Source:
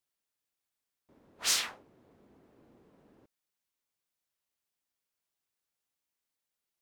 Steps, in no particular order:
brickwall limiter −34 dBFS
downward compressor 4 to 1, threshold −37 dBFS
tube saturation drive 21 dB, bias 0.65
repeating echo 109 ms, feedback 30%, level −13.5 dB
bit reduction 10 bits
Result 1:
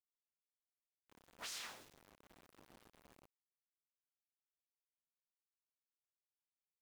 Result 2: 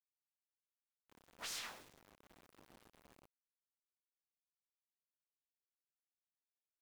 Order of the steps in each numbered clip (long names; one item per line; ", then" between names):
downward compressor, then repeating echo, then brickwall limiter, then tube saturation, then bit reduction
tube saturation, then downward compressor, then brickwall limiter, then repeating echo, then bit reduction